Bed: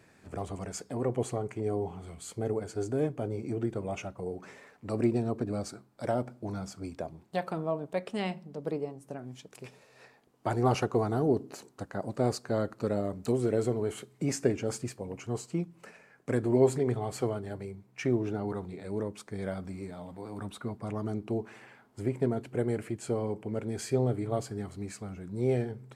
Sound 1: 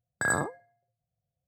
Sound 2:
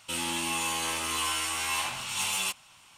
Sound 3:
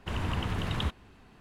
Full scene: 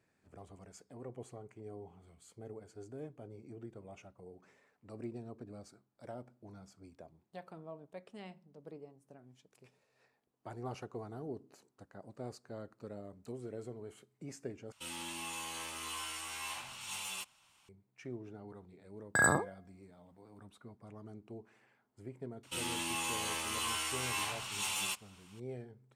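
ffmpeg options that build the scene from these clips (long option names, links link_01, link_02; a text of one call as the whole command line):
ffmpeg -i bed.wav -i cue0.wav -i cue1.wav -filter_complex "[2:a]asplit=2[link_01][link_02];[0:a]volume=-16.5dB,asplit=2[link_03][link_04];[link_03]atrim=end=14.724[link_05];[link_01]atrim=end=2.97,asetpts=PTS-STARTPTS,volume=-12dB[link_06];[link_04]atrim=start=17.686[link_07];[1:a]atrim=end=1.47,asetpts=PTS-STARTPTS,volume=-0.5dB,afade=type=in:duration=0.004:curve=hsin,afade=type=out:start_time=1.466:duration=0.004:curve=hsin,adelay=18940[link_08];[link_02]atrim=end=2.97,asetpts=PTS-STARTPTS,volume=-6.5dB,afade=type=in:duration=0.004:curve=hsin,afade=type=out:start_time=2.966:duration=0.004:curve=hsin,adelay=22430[link_09];[link_05][link_06]acrossfade=duration=0.004:curve1=hsin:curve2=hsin[link_10];[link_10][link_07]acrossfade=duration=0.004:curve1=hsin:curve2=hsin[link_11];[link_11][link_08][link_09]amix=inputs=3:normalize=0" out.wav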